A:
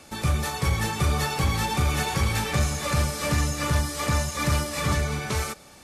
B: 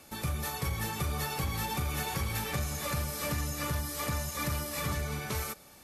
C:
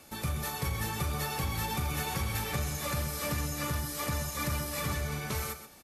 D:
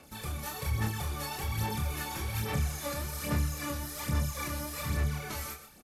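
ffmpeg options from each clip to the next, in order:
-af "equalizer=f=12k:t=o:w=0.27:g=12.5,acompressor=threshold=-22dB:ratio=6,volume=-6.5dB"
-af "aecho=1:1:129:0.282"
-filter_complex "[0:a]aphaser=in_gain=1:out_gain=1:delay=3.6:decay=0.61:speed=1.2:type=sinusoidal,asplit=2[a][b];[b]adelay=28,volume=-4dB[c];[a][c]amix=inputs=2:normalize=0,volume=-6dB"

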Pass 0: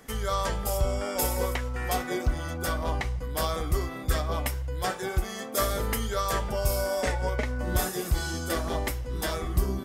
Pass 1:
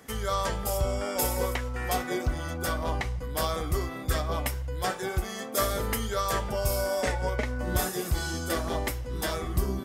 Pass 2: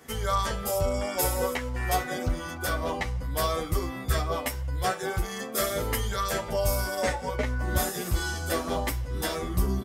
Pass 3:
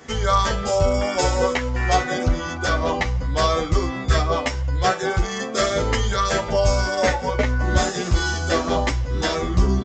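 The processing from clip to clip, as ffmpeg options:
-af "highpass=50"
-filter_complex "[0:a]asplit=2[a][b];[b]adelay=10.1,afreqshift=1.4[c];[a][c]amix=inputs=2:normalize=1,volume=4dB"
-af "aresample=16000,aresample=44100,volume=8dB"

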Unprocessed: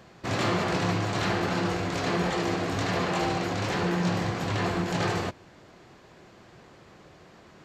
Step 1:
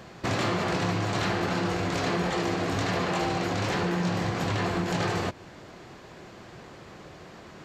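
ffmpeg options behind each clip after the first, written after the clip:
-af "acompressor=threshold=-32dB:ratio=3,volume=6dB"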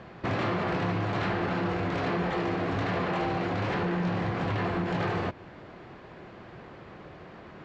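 -af "lowpass=2.7k,asoftclip=type=tanh:threshold=-20dB"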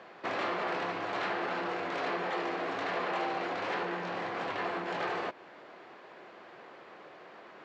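-af "highpass=430,volume=-1.5dB"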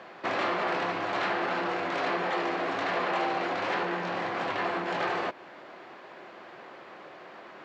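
-af "bandreject=f=450:w=12,volume=4.5dB"

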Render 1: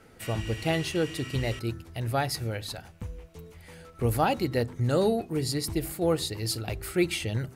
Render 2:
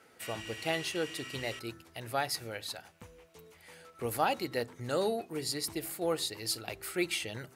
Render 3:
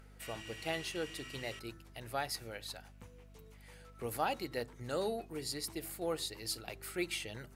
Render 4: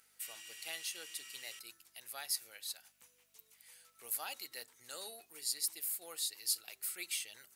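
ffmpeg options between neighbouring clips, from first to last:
-af "highpass=f=580:p=1,volume=-2dB"
-af "aeval=exprs='val(0)+0.00282*(sin(2*PI*50*n/s)+sin(2*PI*2*50*n/s)/2+sin(2*PI*3*50*n/s)/3+sin(2*PI*4*50*n/s)/4+sin(2*PI*5*50*n/s)/5)':c=same,acompressor=mode=upward:threshold=-54dB:ratio=2.5,volume=-5dB"
-af "aderivative,volume=5.5dB"

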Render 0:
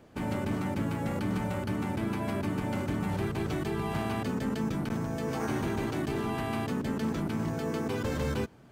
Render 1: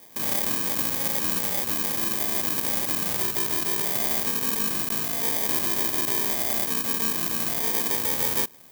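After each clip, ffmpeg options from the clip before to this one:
-af "acrusher=samples=32:mix=1:aa=0.000001,aemphasis=mode=production:type=riaa,volume=2dB"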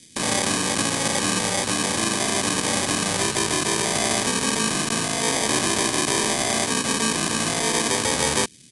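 -filter_complex "[0:a]acrossover=split=320|2300[a][b][c];[b]acrusher=bits=6:mix=0:aa=0.000001[d];[a][d][c]amix=inputs=3:normalize=0,aresample=22050,aresample=44100,volume=9dB"

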